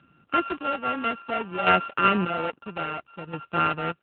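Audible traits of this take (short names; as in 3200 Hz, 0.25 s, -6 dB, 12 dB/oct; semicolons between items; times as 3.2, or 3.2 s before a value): a buzz of ramps at a fixed pitch in blocks of 32 samples; chopped level 0.6 Hz, depth 65%, duty 35%; a quantiser's noise floor 12-bit, dither none; AMR-NB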